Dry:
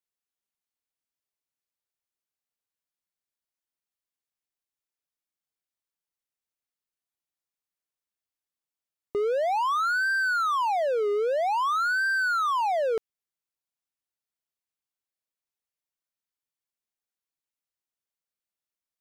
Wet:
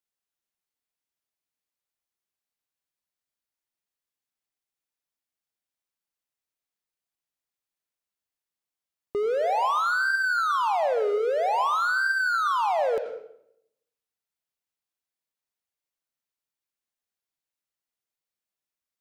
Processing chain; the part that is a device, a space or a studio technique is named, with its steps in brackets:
filtered reverb send (on a send: high-pass filter 310 Hz 6 dB per octave + low-pass filter 5,500 Hz 12 dB per octave + convolution reverb RT60 0.70 s, pre-delay 79 ms, DRR 5.5 dB)

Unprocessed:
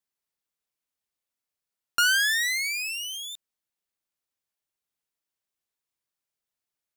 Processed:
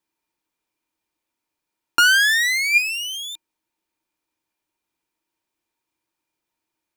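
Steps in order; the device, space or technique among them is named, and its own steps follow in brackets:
inside a helmet (high-shelf EQ 4,200 Hz −5.5 dB; hollow resonant body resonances 320/920/2,400 Hz, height 14 dB, ringing for 65 ms)
level +8 dB

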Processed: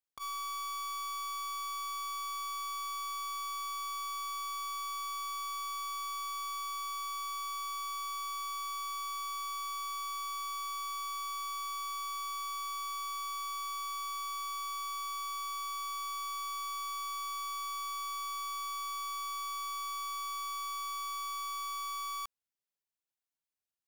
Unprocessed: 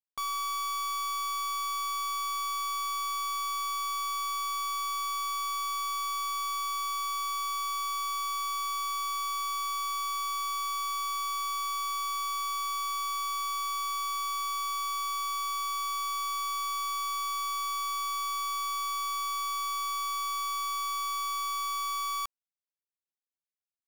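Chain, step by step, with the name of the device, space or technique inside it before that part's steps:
clipper into limiter (hard clipping −35.5 dBFS, distortion −63 dB; brickwall limiter −38.5 dBFS, peak gain reduction 22.5 dB)

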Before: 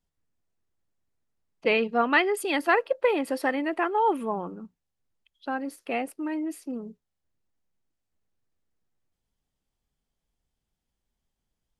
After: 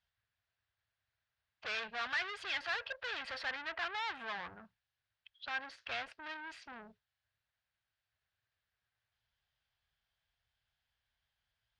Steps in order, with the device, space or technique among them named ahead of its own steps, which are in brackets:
0:03.43–0:03.86: Bessel low-pass filter 2,000 Hz
scooped metal amplifier (tube saturation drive 38 dB, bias 0.3; loudspeaker in its box 78–4,200 Hz, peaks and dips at 110 Hz +6 dB, 170 Hz −6 dB, 300 Hz +3 dB, 660 Hz +4 dB, 1,600 Hz +8 dB; guitar amp tone stack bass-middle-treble 10-0-10)
level +8.5 dB

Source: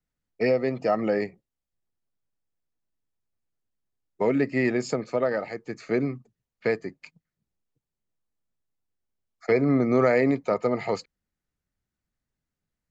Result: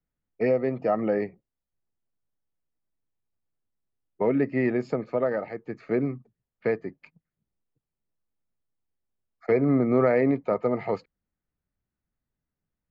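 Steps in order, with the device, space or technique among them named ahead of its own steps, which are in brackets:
phone in a pocket (low-pass filter 3,300 Hz 12 dB per octave; high-shelf EQ 2,300 Hz −9 dB)

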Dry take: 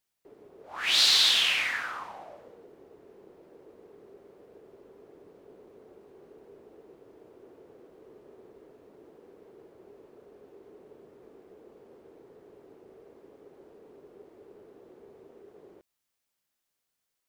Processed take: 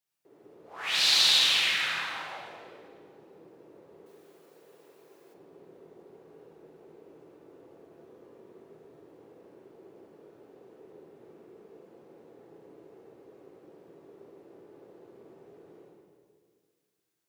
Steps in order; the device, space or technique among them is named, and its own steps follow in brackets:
high-pass filter 90 Hz
stairwell (convolution reverb RT60 1.9 s, pre-delay 45 ms, DRR −4.5 dB)
0:04.06–0:05.34: spectral tilt +3.5 dB per octave
rectangular room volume 480 cubic metres, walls mixed, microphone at 0.69 metres
level −6.5 dB

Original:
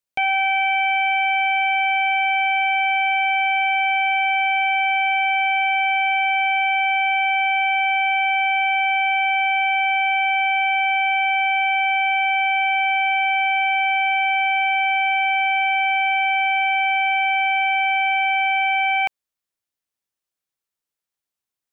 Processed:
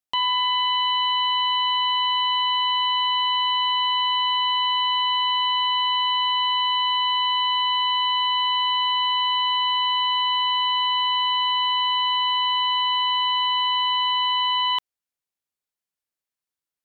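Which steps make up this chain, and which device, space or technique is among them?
nightcore (speed change +29%)
level −2.5 dB

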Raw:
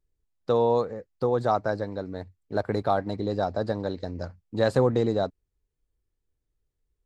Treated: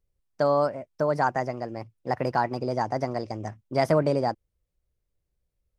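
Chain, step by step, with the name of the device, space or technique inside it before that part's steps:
nightcore (speed change +22%)

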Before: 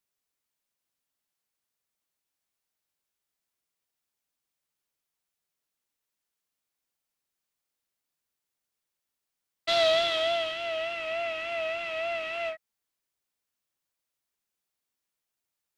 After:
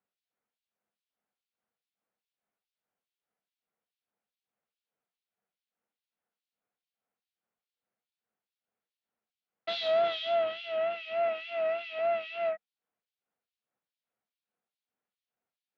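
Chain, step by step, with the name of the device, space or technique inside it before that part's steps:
0:11.28–0:11.99: high-pass filter 170 Hz 24 dB per octave
guitar amplifier with harmonic tremolo (two-band tremolo in antiphase 2.4 Hz, depth 100%, crossover 2,500 Hz; soft clipping −27.5 dBFS, distortion −14 dB; loudspeaker in its box 100–4,000 Hz, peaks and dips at 210 Hz +9 dB, 480 Hz +8 dB, 730 Hz +8 dB, 1,400 Hz +4 dB)

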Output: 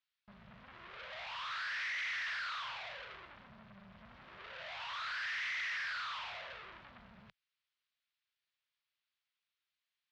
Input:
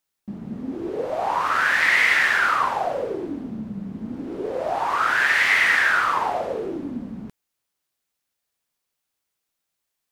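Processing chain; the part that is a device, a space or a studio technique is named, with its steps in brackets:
scooped metal amplifier (tube saturation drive 37 dB, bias 0.7; loudspeaker in its box 79–3,900 Hz, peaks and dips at 84 Hz −9 dB, 160 Hz −4 dB, 280 Hz −8 dB, 450 Hz −9 dB, 800 Hz −7 dB; guitar amp tone stack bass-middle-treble 10-0-10)
level +4.5 dB

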